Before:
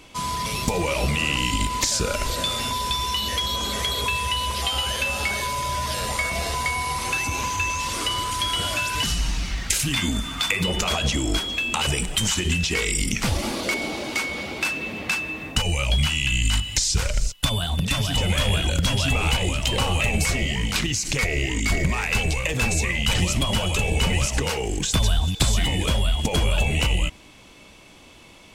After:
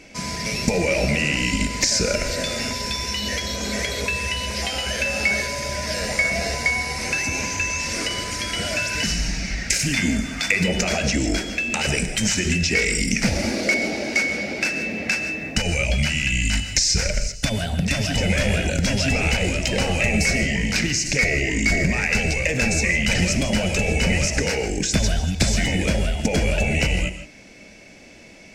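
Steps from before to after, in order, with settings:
drawn EQ curve 120 Hz 0 dB, 210 Hz +8 dB, 350 Hz +3 dB, 640 Hz +7 dB, 1,100 Hz −9 dB, 1,600 Hz +6 dB, 2,300 Hz +8 dB, 3,300 Hz −6 dB, 5,300 Hz +8 dB, 11,000 Hz −6 dB
reverb whose tail is shaped and stops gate 180 ms rising, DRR 10 dB
level −1.5 dB

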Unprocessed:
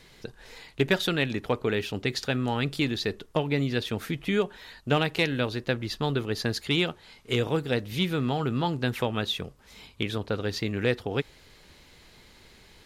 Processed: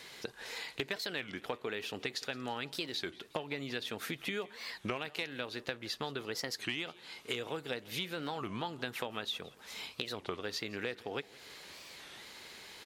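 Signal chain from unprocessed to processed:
high-pass filter 610 Hz 6 dB per octave
downward compressor 6 to 1, threshold −41 dBFS, peak gain reduction 18.5 dB
repeating echo 170 ms, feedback 54%, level −21.5 dB
wow of a warped record 33 1/3 rpm, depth 250 cents
level +5.5 dB

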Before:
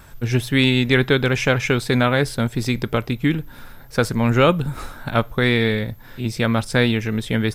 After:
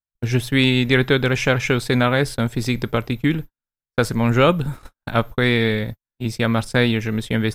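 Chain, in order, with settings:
noise gate −27 dBFS, range −57 dB

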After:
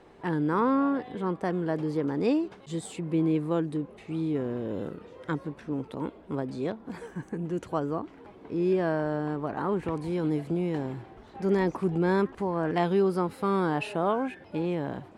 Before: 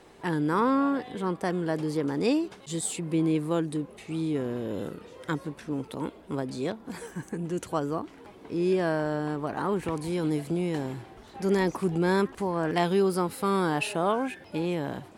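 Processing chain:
low-pass filter 1,900 Hz 6 dB per octave

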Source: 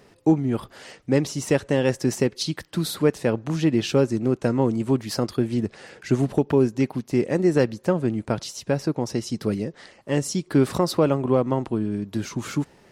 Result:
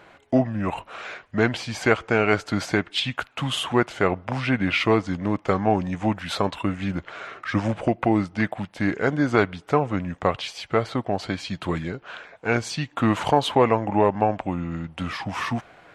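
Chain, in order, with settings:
speed change −19%
flat-topped bell 1,300 Hz +12.5 dB 2.9 octaves
level −3.5 dB

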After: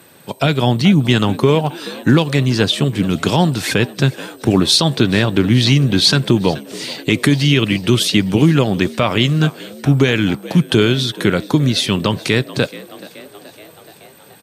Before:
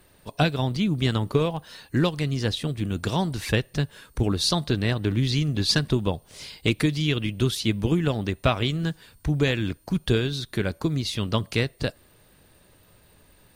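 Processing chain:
high-pass filter 130 Hz 24 dB per octave
speed change −6%
echo with shifted repeats 427 ms, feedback 64%, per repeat +67 Hz, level −21.5 dB
boost into a limiter +13.5 dB
level −1 dB

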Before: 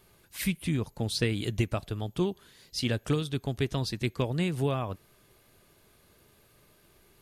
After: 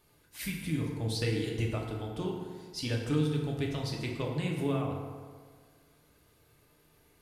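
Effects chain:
feedback delay network reverb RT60 1.7 s, low-frequency decay 0.9×, high-frequency decay 0.55×, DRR −1.5 dB
level −7 dB

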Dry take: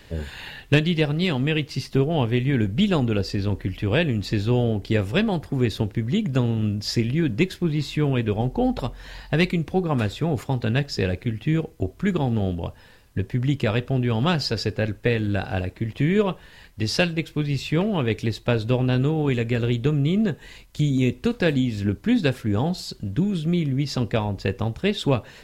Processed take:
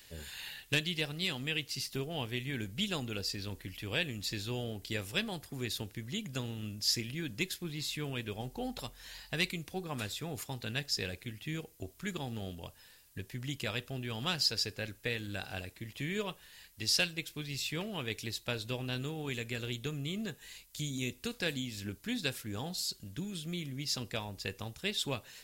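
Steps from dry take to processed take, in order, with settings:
first-order pre-emphasis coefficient 0.9
level +2 dB

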